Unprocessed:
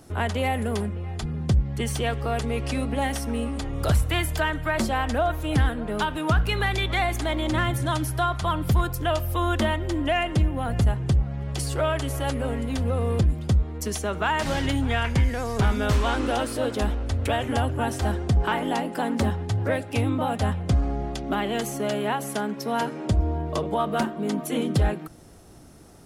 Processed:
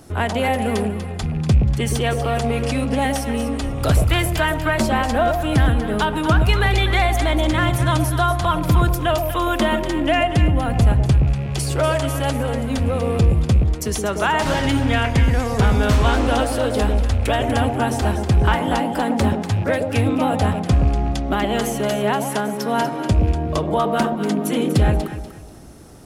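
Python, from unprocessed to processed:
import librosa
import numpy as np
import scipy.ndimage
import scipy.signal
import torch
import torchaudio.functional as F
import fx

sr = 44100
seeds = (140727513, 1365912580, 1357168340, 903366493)

p1 = fx.rattle_buzz(x, sr, strikes_db=-25.0, level_db=-35.0)
p2 = p1 + fx.echo_alternate(p1, sr, ms=121, hz=820.0, feedback_pct=52, wet_db=-4.0, dry=0)
y = F.gain(torch.from_numpy(p2), 5.0).numpy()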